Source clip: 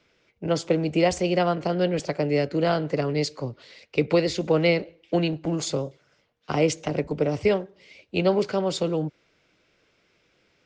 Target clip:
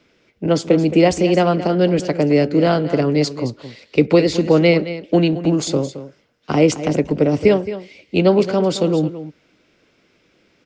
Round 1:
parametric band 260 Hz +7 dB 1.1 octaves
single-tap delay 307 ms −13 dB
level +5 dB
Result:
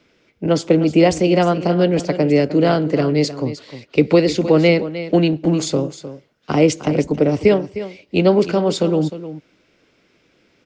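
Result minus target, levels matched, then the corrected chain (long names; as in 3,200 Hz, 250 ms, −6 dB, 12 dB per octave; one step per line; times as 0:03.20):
echo 88 ms late
parametric band 260 Hz +7 dB 1.1 octaves
single-tap delay 219 ms −13 dB
level +5 dB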